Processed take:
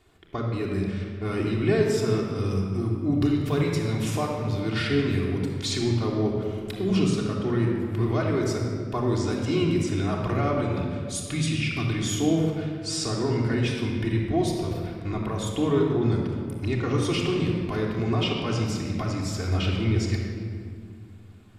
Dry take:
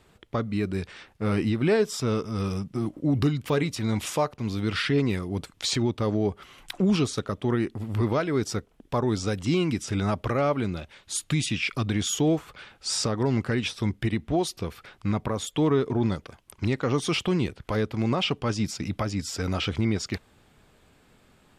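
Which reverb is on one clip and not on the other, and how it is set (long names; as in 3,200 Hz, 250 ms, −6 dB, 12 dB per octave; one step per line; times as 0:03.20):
rectangular room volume 3,900 cubic metres, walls mixed, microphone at 3.3 metres
level −5 dB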